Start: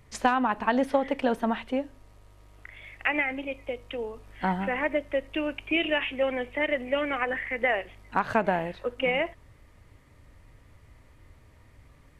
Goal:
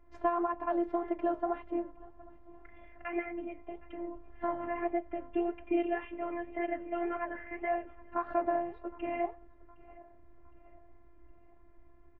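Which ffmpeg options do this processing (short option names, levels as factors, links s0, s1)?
-filter_complex "[0:a]aecho=1:1:763|1526|2289:0.0631|0.029|0.0134,afftfilt=real='hypot(re,im)*cos(PI*b)':imag='0':win_size=512:overlap=0.75,flanger=delay=3.4:depth=5.3:regen=-79:speed=1.8:shape=sinusoidal,asplit=2[s0][s1];[s1]alimiter=level_in=1.06:limit=0.0631:level=0:latency=1:release=280,volume=0.944,volume=1[s2];[s0][s2]amix=inputs=2:normalize=0,lowpass=1000"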